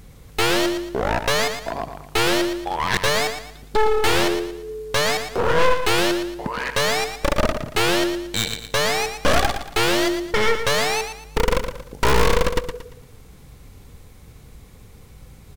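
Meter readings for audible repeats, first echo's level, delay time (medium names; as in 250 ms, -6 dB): 3, -8.5 dB, 115 ms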